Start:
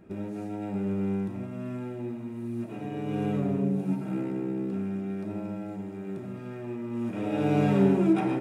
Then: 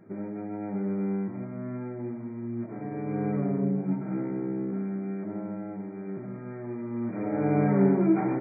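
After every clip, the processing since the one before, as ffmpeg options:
ffmpeg -i in.wav -af "afftfilt=real='re*between(b*sr/4096,100,2400)':imag='im*between(b*sr/4096,100,2400)':win_size=4096:overlap=0.75" out.wav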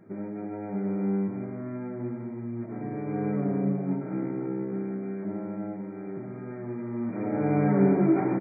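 ffmpeg -i in.wav -af "aecho=1:1:326:0.422" out.wav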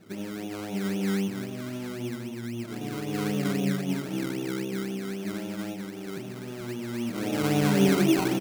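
ffmpeg -i in.wav -af "acrusher=samples=20:mix=1:aa=0.000001:lfo=1:lforange=12:lforate=3.8" out.wav

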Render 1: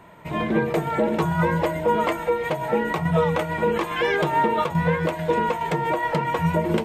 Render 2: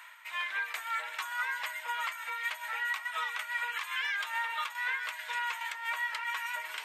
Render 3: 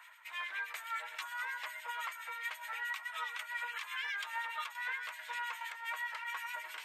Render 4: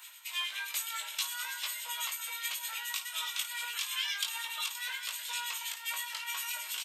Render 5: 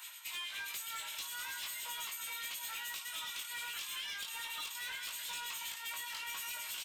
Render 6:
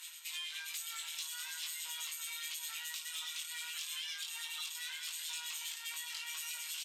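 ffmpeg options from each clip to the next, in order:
ffmpeg -i in.wav -af "highpass=frequency=1400:width=0.5412,highpass=frequency=1400:width=1.3066,alimiter=limit=-23.5dB:level=0:latency=1:release=216,areverse,acompressor=mode=upward:threshold=-38dB:ratio=2.5,areverse" out.wav
ffmpeg -i in.wav -filter_complex "[0:a]acrossover=split=1800[link_01][link_02];[link_01]aeval=exprs='val(0)*(1-0.7/2+0.7/2*cos(2*PI*9.6*n/s))':channel_layout=same[link_03];[link_02]aeval=exprs='val(0)*(1-0.7/2-0.7/2*cos(2*PI*9.6*n/s))':channel_layout=same[link_04];[link_03][link_04]amix=inputs=2:normalize=0,volume=-2dB" out.wav
ffmpeg -i in.wav -af "aexciter=amount=8.9:drive=3:freq=2800,aecho=1:1:20|54:0.596|0.299,volume=-4dB" out.wav
ffmpeg -i in.wav -af "acompressor=threshold=-37dB:ratio=6,asoftclip=type=tanh:threshold=-39dB,volume=2dB" out.wav
ffmpeg -i in.wav -af "bandpass=frequency=5800:width_type=q:width=0.61:csg=0,tremolo=f=160:d=0.4,volume=4.5dB" out.wav

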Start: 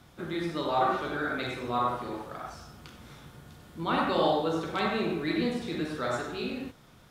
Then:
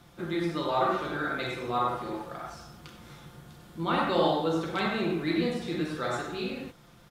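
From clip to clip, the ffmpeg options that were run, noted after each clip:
ffmpeg -i in.wav -af "aecho=1:1:5.8:0.41" out.wav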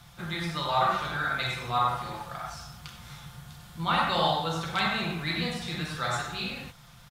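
ffmpeg -i in.wav -af "firequalizer=gain_entry='entry(130,0);entry(310,-18);entry(760,-3);entry(3800,1)':delay=0.05:min_phase=1,volume=5.5dB" out.wav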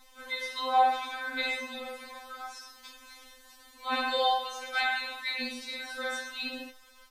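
ffmpeg -i in.wav -af "afftfilt=real='re*3.46*eq(mod(b,12),0)':imag='im*3.46*eq(mod(b,12),0)':win_size=2048:overlap=0.75" out.wav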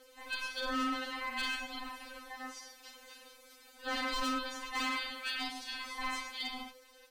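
ffmpeg -i in.wav -af "asoftclip=type=hard:threshold=-28.5dB,aeval=exprs='val(0)*sin(2*PI*510*n/s)':channel_layout=same" out.wav

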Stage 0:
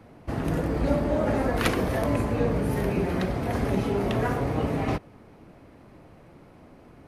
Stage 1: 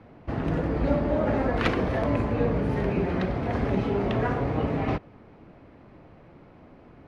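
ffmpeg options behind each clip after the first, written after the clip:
ffmpeg -i in.wav -af "lowpass=3600" out.wav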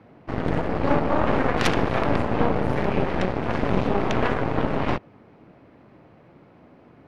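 ffmpeg -i in.wav -af "highpass=98,aeval=exprs='0.422*(cos(1*acos(clip(val(0)/0.422,-1,1)))-cos(1*PI/2))+0.119*(cos(8*acos(clip(val(0)/0.422,-1,1)))-cos(8*PI/2))':channel_layout=same" out.wav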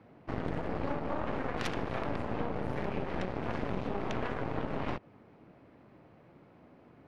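ffmpeg -i in.wav -af "acompressor=threshold=-22dB:ratio=6,volume=-6.5dB" out.wav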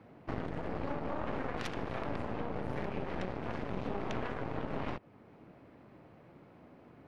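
ffmpeg -i in.wav -af "alimiter=level_in=1dB:limit=-24dB:level=0:latency=1:release=451,volume=-1dB,volume=1dB" out.wav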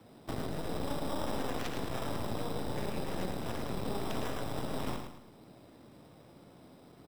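ffmpeg -i in.wav -filter_complex "[0:a]acrossover=split=160|1800[link_01][link_02][link_03];[link_02]acrusher=samples=10:mix=1:aa=0.000001[link_04];[link_01][link_04][link_03]amix=inputs=3:normalize=0,aecho=1:1:108|216|324|432:0.473|0.18|0.0683|0.026" out.wav

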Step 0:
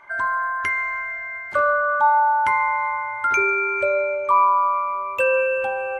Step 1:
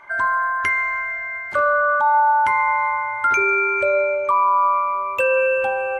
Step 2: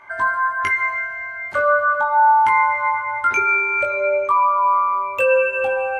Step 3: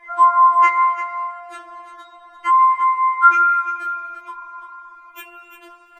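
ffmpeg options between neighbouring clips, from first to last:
ffmpeg -i in.wav -af "alimiter=level_in=12dB:limit=-1dB:release=50:level=0:latency=1,volume=-9dB" out.wav
ffmpeg -i in.wav -af "flanger=delay=18:depth=3.8:speed=0.41,volume=3.5dB" out.wav
ffmpeg -i in.wav -af "aecho=1:1:344:0.282,afftfilt=real='re*4*eq(mod(b,16),0)':imag='im*4*eq(mod(b,16),0)':win_size=2048:overlap=0.75,volume=3dB" out.wav

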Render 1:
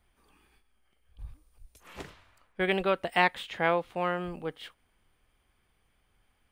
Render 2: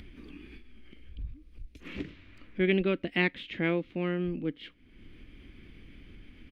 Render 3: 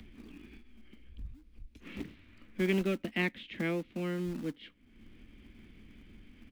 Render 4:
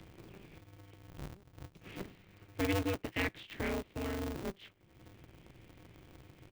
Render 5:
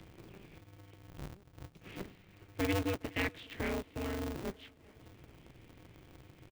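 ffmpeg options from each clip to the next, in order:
ffmpeg -i in.wav -af "firequalizer=gain_entry='entry(130,0);entry(290,9);entry(420,-4);entry(800,-20);entry(2200,-2);entry(8500,-25)':delay=0.05:min_phase=1,acompressor=mode=upward:threshold=-36dB:ratio=2.5,volume=3dB" out.wav
ffmpeg -i in.wav -filter_complex "[0:a]equalizer=frequency=220:width_type=o:width=0.27:gain=8,acrossover=split=170|320|880[link_01][link_02][link_03][link_04];[link_02]acrusher=bits=2:mode=log:mix=0:aa=0.000001[link_05];[link_01][link_05][link_03][link_04]amix=inputs=4:normalize=0,volume=-5dB" out.wav
ffmpeg -i in.wav -af "aeval=exprs='val(0)*sgn(sin(2*PI*100*n/s))':channel_layout=same,volume=-3dB" out.wav
ffmpeg -i in.wav -af "aecho=1:1:413|826|1239|1652:0.0668|0.0401|0.0241|0.0144" out.wav

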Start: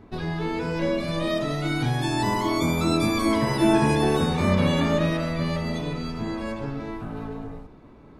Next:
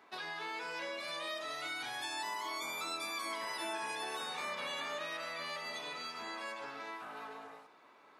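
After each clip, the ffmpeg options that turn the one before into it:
ffmpeg -i in.wav -af "highpass=1000,acompressor=threshold=-40dB:ratio=3" out.wav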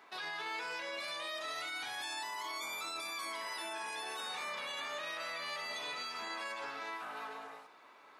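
ffmpeg -i in.wav -af "lowshelf=frequency=480:gain=-7.5,alimiter=level_in=13dB:limit=-24dB:level=0:latency=1:release=11,volume=-13dB,volume=4dB" out.wav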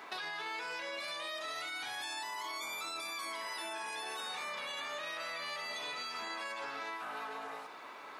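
ffmpeg -i in.wav -af "acompressor=threshold=-50dB:ratio=4,volume=10dB" out.wav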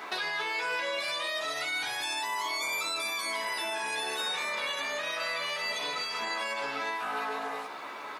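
ffmpeg -i in.wav -filter_complex "[0:a]asplit=2[link_01][link_02];[link_02]adelay=14,volume=-5dB[link_03];[link_01][link_03]amix=inputs=2:normalize=0,volume=7dB" out.wav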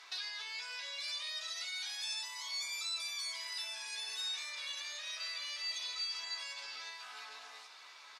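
ffmpeg -i in.wav -af "bandpass=frequency=5300:width_type=q:width=1.8:csg=0,aecho=1:1:681:0.178" out.wav

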